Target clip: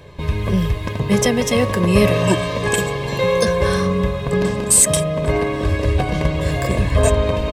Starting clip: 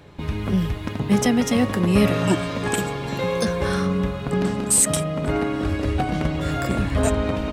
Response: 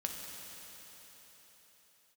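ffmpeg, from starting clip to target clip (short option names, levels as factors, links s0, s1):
-af "asuperstop=centerf=1400:order=4:qfactor=6,aecho=1:1:1.9:0.55,volume=1.58"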